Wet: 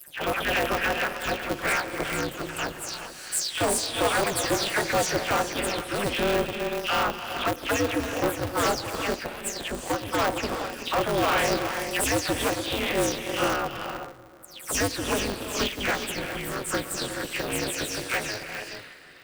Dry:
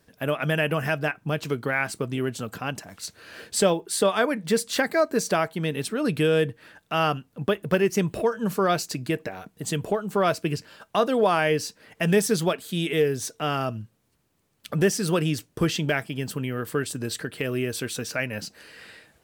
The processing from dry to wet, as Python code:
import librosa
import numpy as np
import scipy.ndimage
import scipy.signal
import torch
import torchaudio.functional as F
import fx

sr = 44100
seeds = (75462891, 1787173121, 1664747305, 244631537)

p1 = fx.spec_delay(x, sr, highs='early', ms=216)
p2 = scipy.signal.sosfilt(scipy.signal.butter(2, 200.0, 'highpass', fs=sr, output='sos'), p1)
p3 = fx.low_shelf(p2, sr, hz=470.0, db=-7.5)
p4 = np.clip(p3, -10.0 ** (-22.5 / 20.0), 10.0 ** (-22.5 / 20.0))
p5 = p4 + fx.echo_bbd(p4, sr, ms=302, stages=4096, feedback_pct=72, wet_db=-23.5, dry=0)
p6 = fx.rev_gated(p5, sr, seeds[0], gate_ms=460, shape='rising', drr_db=6.0)
p7 = p6 * np.sign(np.sin(2.0 * np.pi * 100.0 * np.arange(len(p6)) / sr))
y = p7 * 10.0 ** (2.5 / 20.0)